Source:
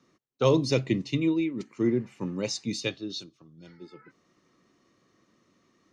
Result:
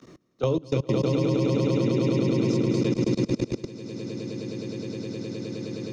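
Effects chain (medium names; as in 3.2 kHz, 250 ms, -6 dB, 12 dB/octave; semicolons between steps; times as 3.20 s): treble shelf 2.6 kHz -8 dB; hum notches 50/100/150/200/250/300/350/400 Hz; echo with a slow build-up 104 ms, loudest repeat 8, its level -4 dB; level held to a coarse grid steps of 23 dB; peaking EQ 1.4 kHz -6.5 dB 2.3 oct; three bands compressed up and down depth 70%; trim +1.5 dB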